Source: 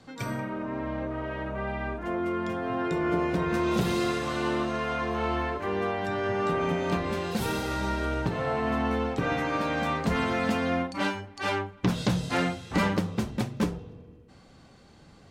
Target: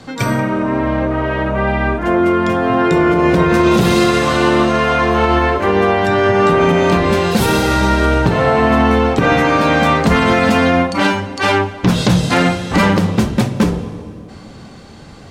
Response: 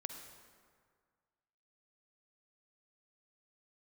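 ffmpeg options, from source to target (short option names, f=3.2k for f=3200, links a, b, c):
-filter_complex "[0:a]asplit=2[a][b];[1:a]atrim=start_sample=2205,asetrate=25137,aresample=44100[c];[b][c]afir=irnorm=-1:irlink=0,volume=-11dB[d];[a][d]amix=inputs=2:normalize=0,alimiter=level_in=16dB:limit=-1dB:release=50:level=0:latency=1,volume=-2dB"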